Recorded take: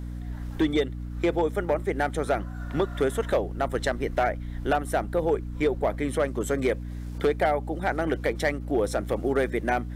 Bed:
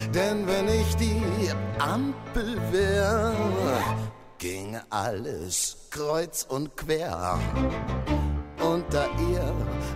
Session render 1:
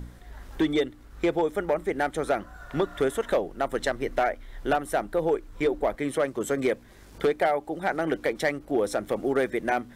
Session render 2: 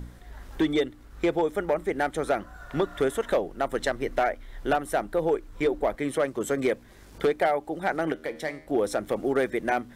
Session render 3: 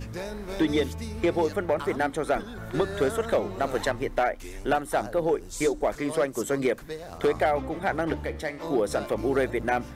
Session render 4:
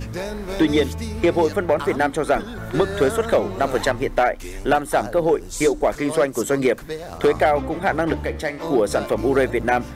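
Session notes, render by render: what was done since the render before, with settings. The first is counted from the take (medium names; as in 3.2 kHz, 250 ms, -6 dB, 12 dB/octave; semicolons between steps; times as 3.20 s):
de-hum 60 Hz, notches 5
8.12–8.67 s: feedback comb 78 Hz, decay 0.62 s
add bed -10.5 dB
trim +6.5 dB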